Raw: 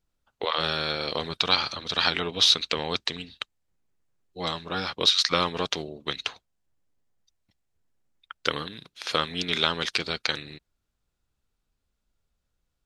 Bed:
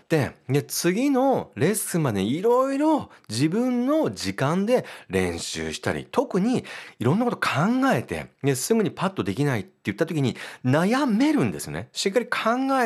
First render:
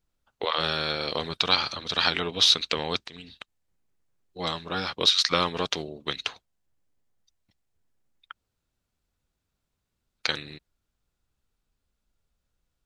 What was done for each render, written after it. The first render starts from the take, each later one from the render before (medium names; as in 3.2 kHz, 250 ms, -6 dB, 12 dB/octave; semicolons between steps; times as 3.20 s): 3.05–4.39 s: compression 5:1, threshold -38 dBFS; 8.33–10.21 s: room tone, crossfade 0.06 s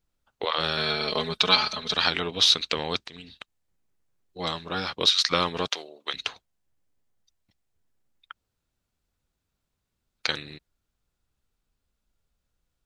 0.77–1.94 s: comb 4.7 ms, depth 90%; 5.68–6.14 s: high-pass 590 Hz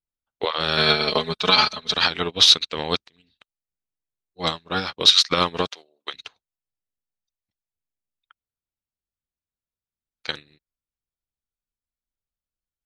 loudness maximiser +14 dB; upward expansion 2.5:1, over -30 dBFS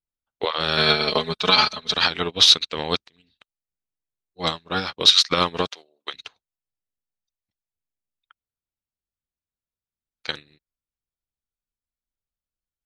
no audible change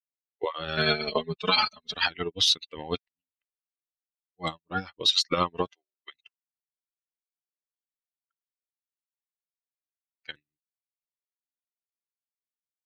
expander on every frequency bin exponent 2; peak limiter -12 dBFS, peak gain reduction 8 dB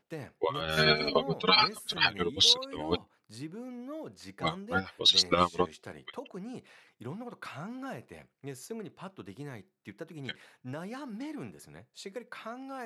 add bed -19.5 dB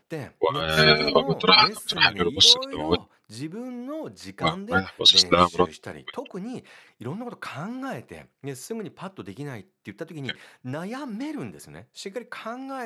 trim +7.5 dB